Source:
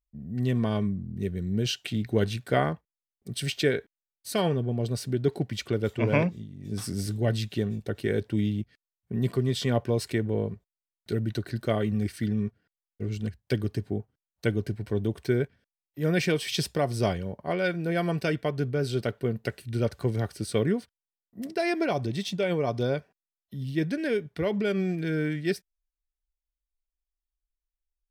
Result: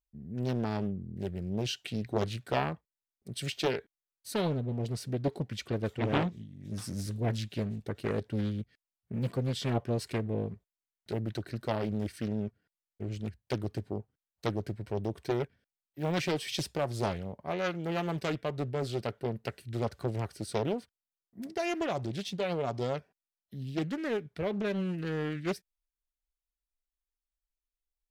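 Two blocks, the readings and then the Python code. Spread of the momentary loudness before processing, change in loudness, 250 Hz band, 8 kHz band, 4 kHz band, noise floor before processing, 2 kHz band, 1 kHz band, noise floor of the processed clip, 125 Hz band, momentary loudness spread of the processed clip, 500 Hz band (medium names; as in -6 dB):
8 LU, -5.5 dB, -5.5 dB, -5.0 dB, -4.5 dB, under -85 dBFS, -6.5 dB, -2.0 dB, under -85 dBFS, -5.5 dB, 8 LU, -5.5 dB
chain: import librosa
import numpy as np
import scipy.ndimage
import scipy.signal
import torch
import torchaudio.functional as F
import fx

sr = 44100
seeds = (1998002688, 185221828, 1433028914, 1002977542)

y = fx.doppler_dist(x, sr, depth_ms=0.84)
y = F.gain(torch.from_numpy(y), -5.0).numpy()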